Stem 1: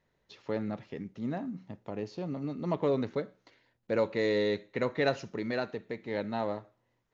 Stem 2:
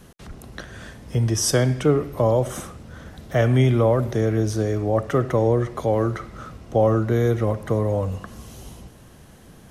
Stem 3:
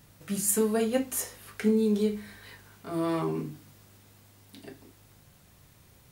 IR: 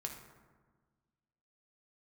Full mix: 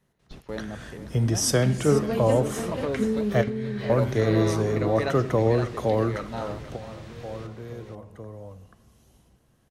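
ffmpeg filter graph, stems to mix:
-filter_complex "[0:a]volume=-1.5dB,asplit=3[link_01][link_02][link_03];[link_02]volume=-13dB[link_04];[1:a]volume=-3dB,asplit=3[link_05][link_06][link_07];[link_06]volume=-21dB[link_08];[link_07]volume=-16dB[link_09];[2:a]lowpass=4200,acompressor=mode=upward:threshold=-28dB:ratio=2.5,adelay=1350,volume=-1.5dB,asplit=2[link_10][link_11];[link_11]volume=-6dB[link_12];[link_03]apad=whole_len=427798[link_13];[link_05][link_13]sidechaingate=range=-34dB:threshold=-56dB:ratio=16:detection=peak[link_14];[3:a]atrim=start_sample=2205[link_15];[link_08][link_15]afir=irnorm=-1:irlink=0[link_16];[link_04][link_09][link_12]amix=inputs=3:normalize=0,aecho=0:1:484:1[link_17];[link_01][link_14][link_10][link_16][link_17]amix=inputs=5:normalize=0"

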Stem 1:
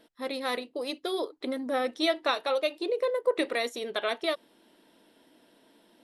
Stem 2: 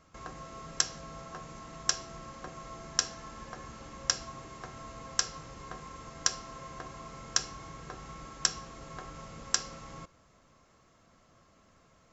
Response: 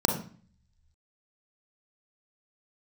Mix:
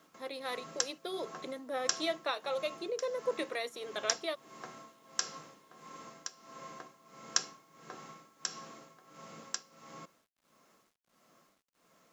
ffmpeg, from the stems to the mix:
-filter_complex "[0:a]highpass=frequency=300:width=0.5412,highpass=frequency=300:width=1.3066,volume=-7.5dB[link_01];[1:a]tremolo=f=1.5:d=0.85,highpass=frequency=180:width=0.5412,highpass=frequency=180:width=1.3066,volume=-1.5dB[link_02];[link_01][link_02]amix=inputs=2:normalize=0,acrusher=bits=11:mix=0:aa=0.000001"

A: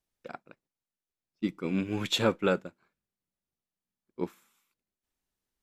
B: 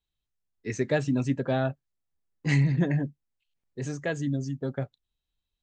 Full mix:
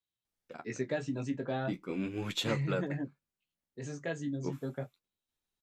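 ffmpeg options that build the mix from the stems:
ffmpeg -i stem1.wav -i stem2.wav -filter_complex "[0:a]adelay=250,volume=-0.5dB[link_01];[1:a]highpass=120,volume=-2.5dB[link_02];[link_01][link_02]amix=inputs=2:normalize=0,flanger=delay=8.8:depth=9.6:regen=-31:speed=0.37:shape=sinusoidal,acompressor=threshold=-29dB:ratio=3" out.wav

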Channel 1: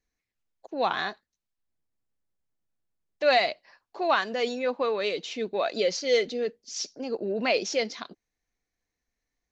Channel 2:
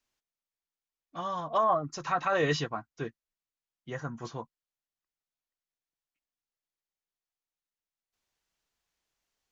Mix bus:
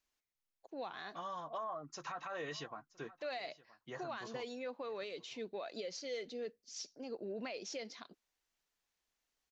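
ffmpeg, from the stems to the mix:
ffmpeg -i stem1.wav -i stem2.wav -filter_complex "[0:a]acompressor=threshold=-26dB:ratio=2.5,volume=-12dB[link_01];[1:a]highpass=frequency=320:poles=1,acompressor=threshold=-47dB:ratio=1.5,volume=-3dB,asplit=2[link_02][link_03];[link_03]volume=-21.5dB,aecho=0:1:971:1[link_04];[link_01][link_02][link_04]amix=inputs=3:normalize=0,alimiter=level_in=9.5dB:limit=-24dB:level=0:latency=1:release=85,volume=-9.5dB" out.wav

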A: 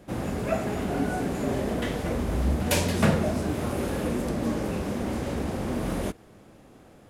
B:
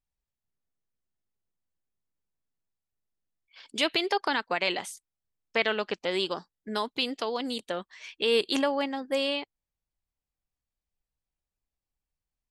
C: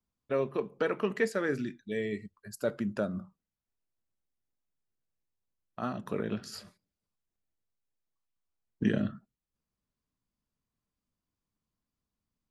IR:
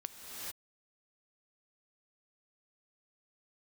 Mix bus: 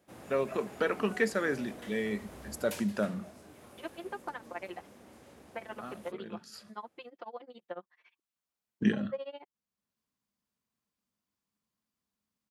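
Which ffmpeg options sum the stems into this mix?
-filter_complex "[0:a]highshelf=frequency=8000:gain=5,volume=-14.5dB,afade=type=out:start_time=2.64:duration=0.21:silence=0.473151[link_01];[1:a]lowpass=1300,aecho=1:1:5.7:0.87,tremolo=f=14:d=0.93,volume=-8dB,asplit=3[link_02][link_03][link_04];[link_02]atrim=end=8.2,asetpts=PTS-STARTPTS,afade=type=out:start_time=8.196:duration=0.004:curve=hsin[link_05];[link_03]atrim=start=8.2:end=8.9,asetpts=PTS-STARTPTS,volume=0[link_06];[link_04]atrim=start=8.9,asetpts=PTS-STARTPTS,afade=type=in:duration=0.004:curve=hsin[link_07];[link_05][link_06][link_07]concat=n=3:v=0:a=1,asplit=2[link_08][link_09];[2:a]equalizer=frequency=210:width_type=o:width=0.32:gain=7.5,volume=2.5dB[link_10];[link_09]apad=whole_len=551488[link_11];[link_10][link_11]sidechaincompress=threshold=-44dB:ratio=8:attack=5.4:release=685[link_12];[link_01][link_08][link_12]amix=inputs=3:normalize=0,highpass=64,lowshelf=frequency=330:gain=-9.5"

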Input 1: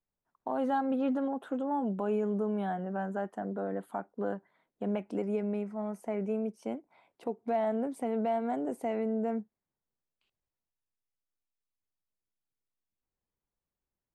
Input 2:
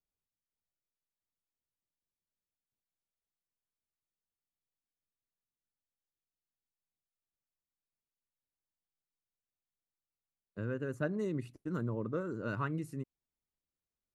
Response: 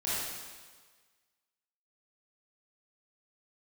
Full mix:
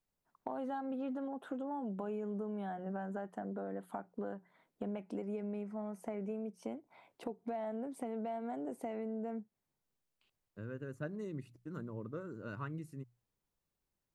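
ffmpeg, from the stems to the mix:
-filter_complex "[0:a]acompressor=threshold=-42dB:ratio=4,volume=2.5dB[link_01];[1:a]volume=-7.5dB[link_02];[link_01][link_02]amix=inputs=2:normalize=0,equalizer=frequency=140:width_type=o:width=0.77:gain=3,bandreject=frequency=60:width_type=h:width=6,bandreject=frequency=120:width_type=h:width=6,bandreject=frequency=180:width_type=h:width=6"

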